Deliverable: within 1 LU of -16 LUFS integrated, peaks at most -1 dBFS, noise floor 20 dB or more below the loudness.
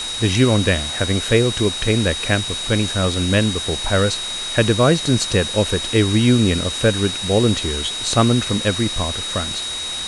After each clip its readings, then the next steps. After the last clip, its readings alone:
steady tone 3800 Hz; tone level -25 dBFS; noise floor -26 dBFS; noise floor target -38 dBFS; loudness -18.0 LUFS; peak -2.5 dBFS; loudness target -16.0 LUFS
-> notch 3800 Hz, Q 30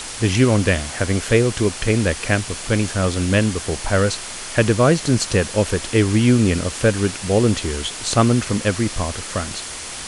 steady tone none; noise floor -32 dBFS; noise floor target -39 dBFS
-> denoiser 7 dB, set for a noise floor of -32 dBFS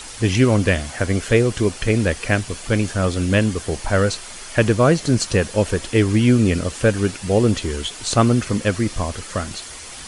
noise floor -36 dBFS; noise floor target -40 dBFS
-> denoiser 6 dB, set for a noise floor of -36 dBFS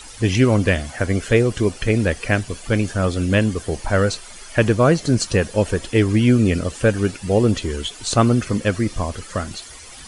noise floor -39 dBFS; noise floor target -40 dBFS
-> denoiser 6 dB, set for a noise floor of -39 dBFS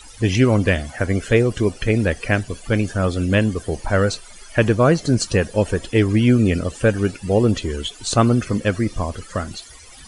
noise floor -42 dBFS; loudness -19.5 LUFS; peak -3.5 dBFS; loudness target -16.0 LUFS
-> gain +3.5 dB; limiter -1 dBFS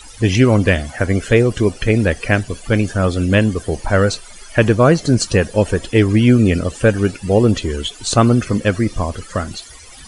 loudness -16.0 LUFS; peak -1.0 dBFS; noise floor -39 dBFS

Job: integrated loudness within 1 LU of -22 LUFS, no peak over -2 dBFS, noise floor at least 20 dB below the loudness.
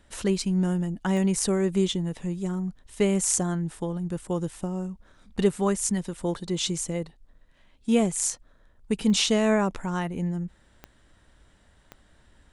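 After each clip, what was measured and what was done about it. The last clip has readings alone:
clicks 4; loudness -26.5 LUFS; peak -5.5 dBFS; loudness target -22.0 LUFS
-> de-click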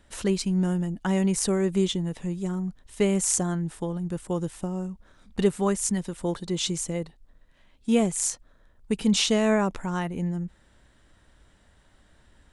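clicks 0; loudness -26.5 LUFS; peak -5.5 dBFS; loudness target -22.0 LUFS
-> gain +4.5 dB; limiter -2 dBFS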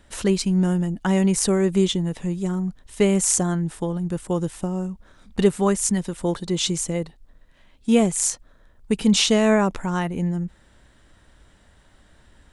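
loudness -22.0 LUFS; peak -2.0 dBFS; noise floor -56 dBFS

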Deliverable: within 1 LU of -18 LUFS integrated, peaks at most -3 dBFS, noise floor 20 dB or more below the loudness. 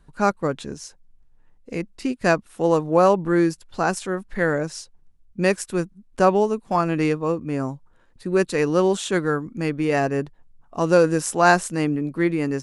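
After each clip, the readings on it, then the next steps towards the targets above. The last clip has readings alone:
loudness -22.0 LUFS; peak -2.0 dBFS; loudness target -18.0 LUFS
-> gain +4 dB; limiter -3 dBFS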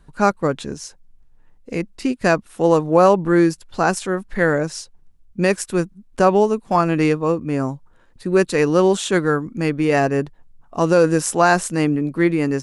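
loudness -18.5 LUFS; peak -3.0 dBFS; noise floor -52 dBFS

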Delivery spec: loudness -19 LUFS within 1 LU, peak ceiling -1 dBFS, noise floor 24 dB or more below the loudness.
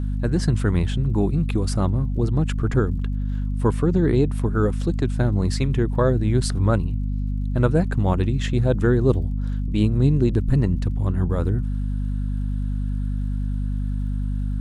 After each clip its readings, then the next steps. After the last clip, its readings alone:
ticks 60/s; hum 50 Hz; harmonics up to 250 Hz; hum level -22 dBFS; loudness -22.5 LUFS; peak -6.0 dBFS; loudness target -19.0 LUFS
-> de-click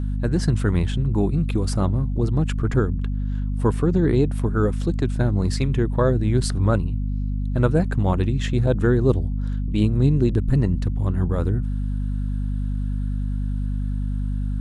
ticks 0.14/s; hum 50 Hz; harmonics up to 250 Hz; hum level -22 dBFS
-> notches 50/100/150/200/250 Hz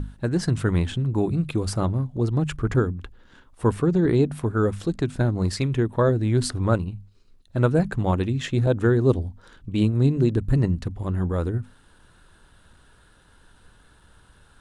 hum none; loudness -23.5 LUFS; peak -7.5 dBFS; loudness target -19.0 LUFS
-> gain +4.5 dB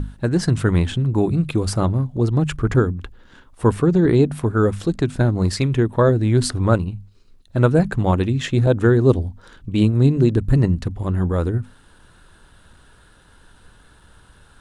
loudness -19.0 LUFS; peak -3.0 dBFS; noise floor -51 dBFS

